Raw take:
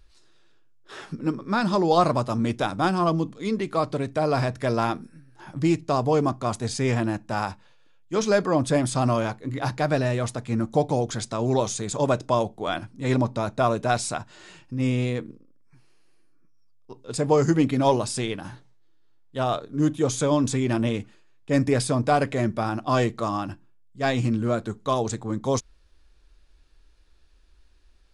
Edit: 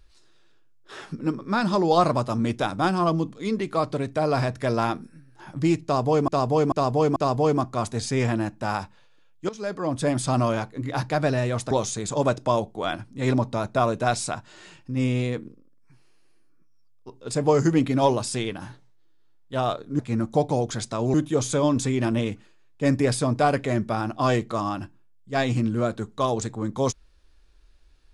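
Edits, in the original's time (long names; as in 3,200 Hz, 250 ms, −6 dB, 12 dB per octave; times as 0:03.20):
0:05.84–0:06.28: repeat, 4 plays
0:08.17–0:08.91: fade in, from −18.5 dB
0:10.39–0:11.54: move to 0:19.82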